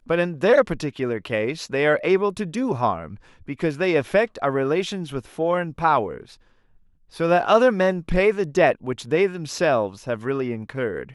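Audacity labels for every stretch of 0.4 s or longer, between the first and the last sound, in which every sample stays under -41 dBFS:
6.340000	7.130000	silence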